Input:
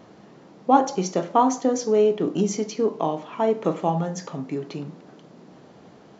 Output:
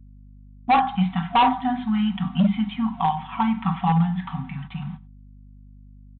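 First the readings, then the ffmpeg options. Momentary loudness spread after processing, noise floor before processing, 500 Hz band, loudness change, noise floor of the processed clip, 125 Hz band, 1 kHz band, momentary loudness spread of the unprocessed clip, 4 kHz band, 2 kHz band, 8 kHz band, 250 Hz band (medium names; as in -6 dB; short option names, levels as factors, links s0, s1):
14 LU, -50 dBFS, -17.0 dB, +0.5 dB, -46 dBFS, +7.0 dB, +2.5 dB, 12 LU, +5.0 dB, +8.0 dB, no reading, +3.0 dB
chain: -af "afftfilt=real='re*(1-between(b*sr/4096,260,710))':imag='im*(1-between(b*sr/4096,260,710))':win_size=4096:overlap=0.75,agate=range=0.00282:threshold=0.00891:ratio=16:detection=peak,bandreject=f=50:t=h:w=6,bandreject=f=100:t=h:w=6,bandreject=f=150:t=h:w=6,bandreject=f=200:t=h:w=6,bandreject=f=250:t=h:w=6,bandreject=f=300:t=h:w=6,bandreject=f=350:t=h:w=6,bandreject=f=400:t=h:w=6,bandreject=f=450:t=h:w=6,bandreject=f=500:t=h:w=6,aecho=1:1:5.3:0.67,aecho=1:1:94:0.075,aresample=8000,asoftclip=type=hard:threshold=0.141,aresample=44100,aeval=exprs='val(0)+0.00355*(sin(2*PI*50*n/s)+sin(2*PI*2*50*n/s)/2+sin(2*PI*3*50*n/s)/3+sin(2*PI*4*50*n/s)/4+sin(2*PI*5*50*n/s)/5)':c=same,volume=1.58"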